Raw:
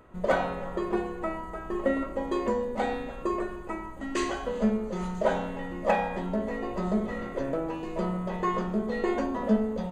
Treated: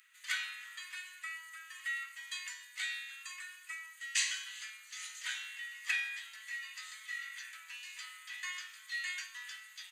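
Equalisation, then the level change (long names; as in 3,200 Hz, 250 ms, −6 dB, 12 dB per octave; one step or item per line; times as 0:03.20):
Butterworth high-pass 1,800 Hz 36 dB per octave
high-shelf EQ 3,200 Hz +9 dB
+1.0 dB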